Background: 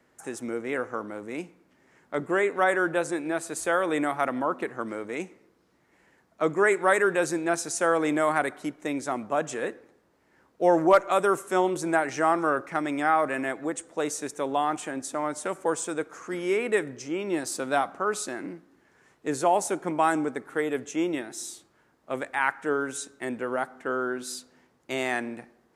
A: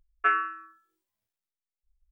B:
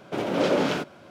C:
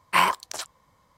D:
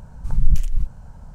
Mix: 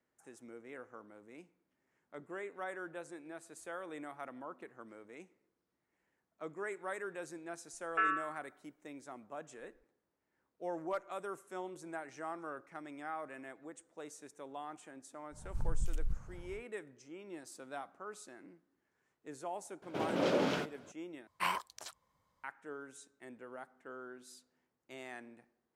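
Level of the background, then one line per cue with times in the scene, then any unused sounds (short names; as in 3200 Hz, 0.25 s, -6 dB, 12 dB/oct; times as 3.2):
background -19.5 dB
7.73 add A -5.5 dB + limiter -16 dBFS
15.3 add D -10.5 dB, fades 0.10 s + compressor, threshold -16 dBFS
19.82 add B -8.5 dB
21.27 replace with C -14.5 dB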